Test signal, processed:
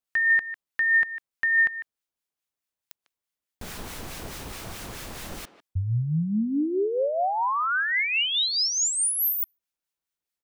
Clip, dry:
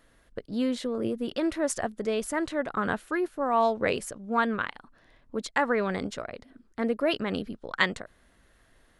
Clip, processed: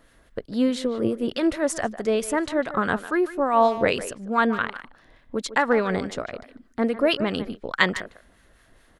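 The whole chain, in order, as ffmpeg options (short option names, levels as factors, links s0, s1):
-filter_complex "[0:a]asplit=2[s0][s1];[s1]adelay=150,highpass=300,lowpass=3400,asoftclip=type=hard:threshold=0.15,volume=0.224[s2];[s0][s2]amix=inputs=2:normalize=0,acrossover=split=1200[s3][s4];[s3]aeval=exprs='val(0)*(1-0.5/2+0.5/2*cos(2*PI*4.7*n/s))':c=same[s5];[s4]aeval=exprs='val(0)*(1-0.5/2-0.5/2*cos(2*PI*4.7*n/s))':c=same[s6];[s5][s6]amix=inputs=2:normalize=0,volume=2.24"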